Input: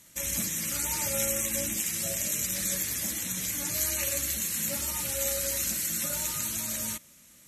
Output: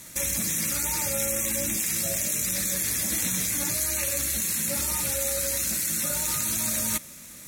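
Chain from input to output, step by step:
notch filter 3,000 Hz, Q 8.3
in parallel at +2 dB: compressor whose output falls as the input rises −36 dBFS, ratio −0.5
on the sum: bad sample-rate conversion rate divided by 2×, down none, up hold

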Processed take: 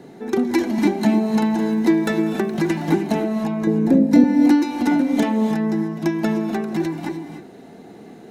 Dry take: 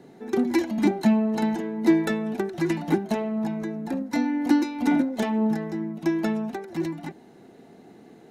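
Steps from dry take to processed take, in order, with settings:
0:03.67–0:04.24: low shelf with overshoot 660 Hz +10 dB, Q 1.5
in parallel at +2 dB: downward compressor, threshold −28 dBFS, peak gain reduction 17.5 dB
0:01.08–0:02.90: on the sum: surface crackle 330 per second −42 dBFS
reverb whose tail is shaped and stops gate 330 ms rising, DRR 7 dB

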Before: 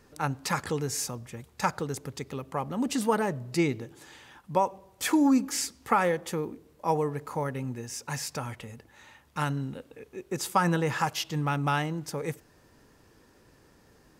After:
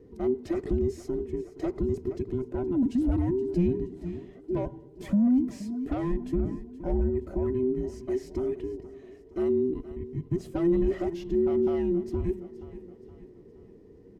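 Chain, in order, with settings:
frequency inversion band by band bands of 500 Hz
on a send: repeating echo 471 ms, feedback 47%, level −18 dB
on the sum: soft clipping −22 dBFS, distortion −13 dB
flat-topped bell 920 Hz −10.5 dB
in parallel at +2 dB: brickwall limiter −29 dBFS, peak gain reduction 7.5 dB
on the sum: drawn EQ curve 230 Hz 0 dB, 450 Hz +4 dB, 2,000 Hz −18 dB, 10,000 Hz −28 dB

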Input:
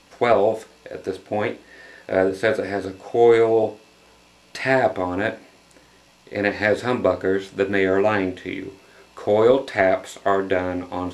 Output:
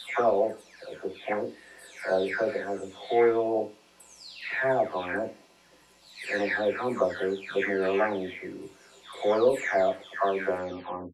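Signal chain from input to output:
every frequency bin delayed by itself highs early, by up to 550 ms
low-shelf EQ 190 Hz −6.5 dB
level −4.5 dB

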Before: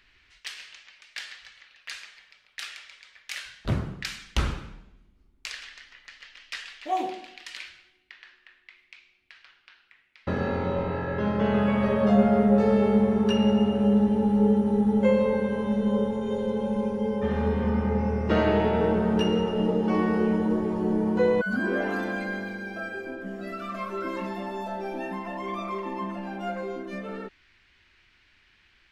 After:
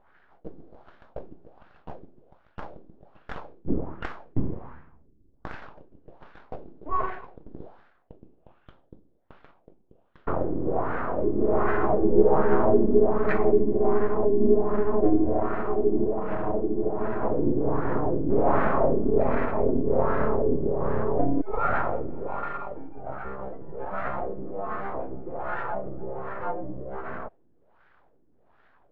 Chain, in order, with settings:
full-wave rectification
formants moved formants −5 semitones
auto-filter low-pass sine 1.3 Hz 310–1,600 Hz
level +2.5 dB

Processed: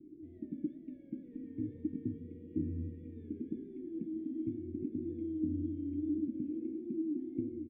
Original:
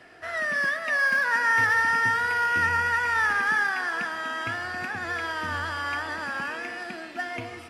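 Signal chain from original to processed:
elliptic band-stop filter 340–3,100 Hz, stop band 60 dB
flanger 1.6 Hz, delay 2.6 ms, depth 9.8 ms, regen +77%
formant resonators in series u
double-tracking delay 13 ms −10.5 dB
level +15.5 dB

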